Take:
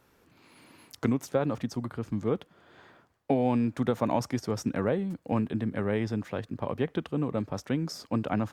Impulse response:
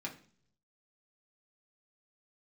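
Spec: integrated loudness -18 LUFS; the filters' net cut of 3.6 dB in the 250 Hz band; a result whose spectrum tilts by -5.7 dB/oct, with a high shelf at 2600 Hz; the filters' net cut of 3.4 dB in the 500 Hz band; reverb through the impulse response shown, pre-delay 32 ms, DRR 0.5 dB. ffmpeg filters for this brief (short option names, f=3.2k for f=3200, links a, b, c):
-filter_complex "[0:a]equalizer=f=250:t=o:g=-3.5,equalizer=f=500:t=o:g=-3.5,highshelf=f=2.6k:g=8,asplit=2[a][b];[1:a]atrim=start_sample=2205,adelay=32[c];[b][c]afir=irnorm=-1:irlink=0,volume=-0.5dB[d];[a][d]amix=inputs=2:normalize=0,volume=11dB"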